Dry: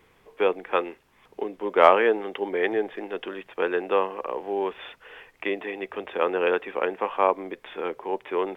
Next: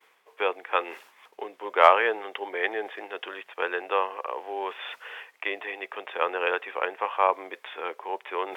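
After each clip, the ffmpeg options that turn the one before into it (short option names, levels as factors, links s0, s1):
-af "highpass=690,agate=range=0.0224:threshold=0.00141:ratio=3:detection=peak,areverse,acompressor=mode=upward:threshold=0.02:ratio=2.5,areverse,volume=1.19"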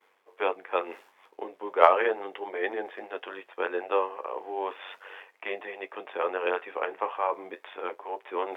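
-af "equalizer=f=440:w=0.34:g=8.5,tremolo=f=95:d=0.621,flanger=delay=8.2:depth=4.8:regen=-54:speed=0.35:shape=sinusoidal,volume=0.841"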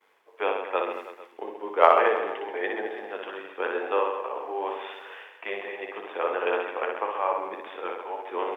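-af "aecho=1:1:60|132|218.4|322.1|446.5:0.631|0.398|0.251|0.158|0.1"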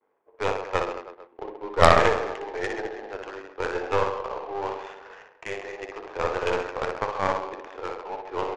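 -af "adynamicsmooth=sensitivity=7:basefreq=750,aresample=16000,aresample=44100,aeval=exprs='0.891*(cos(1*acos(clip(val(0)/0.891,-1,1)))-cos(1*PI/2))+0.2*(cos(6*acos(clip(val(0)/0.891,-1,1)))-cos(6*PI/2))':c=same"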